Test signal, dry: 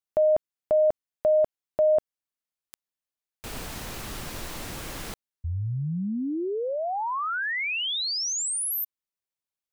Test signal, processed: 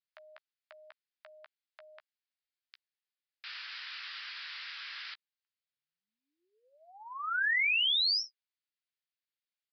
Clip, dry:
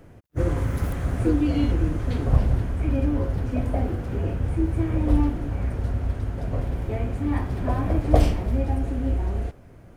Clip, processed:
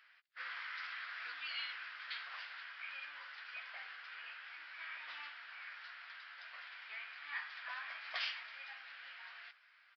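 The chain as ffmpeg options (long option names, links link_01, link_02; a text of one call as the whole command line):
ffmpeg -i in.wav -filter_complex "[0:a]asuperpass=centerf=3700:order=8:qfactor=0.52,aresample=11025,aresample=44100,asplit=2[link_01][link_02];[link_02]adelay=14,volume=-9.5dB[link_03];[link_01][link_03]amix=inputs=2:normalize=0" out.wav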